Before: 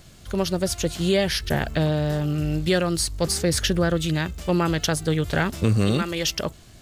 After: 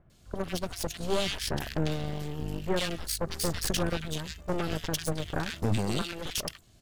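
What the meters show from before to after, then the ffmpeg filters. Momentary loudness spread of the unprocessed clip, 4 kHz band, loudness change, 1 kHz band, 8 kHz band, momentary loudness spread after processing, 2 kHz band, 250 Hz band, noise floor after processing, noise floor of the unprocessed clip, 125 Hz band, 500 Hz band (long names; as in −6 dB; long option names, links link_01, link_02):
4 LU, −7.0 dB, −9.0 dB, −7.0 dB, −7.5 dB, 7 LU, −9.0 dB, −10.0 dB, −59 dBFS, −47 dBFS, −10.0 dB, −9.0 dB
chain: -filter_complex "[0:a]asoftclip=type=tanh:threshold=-13.5dB,aeval=exprs='0.2*(cos(1*acos(clip(val(0)/0.2,-1,1)))-cos(1*PI/2))+0.0398*(cos(3*acos(clip(val(0)/0.2,-1,1)))-cos(3*PI/2))+0.0794*(cos(4*acos(clip(val(0)/0.2,-1,1)))-cos(4*PI/2))+0.0316*(cos(6*acos(clip(val(0)/0.2,-1,1)))-cos(6*PI/2))':channel_layout=same,acrossover=split=1700[link_01][link_02];[link_02]adelay=100[link_03];[link_01][link_03]amix=inputs=2:normalize=0,volume=-4dB"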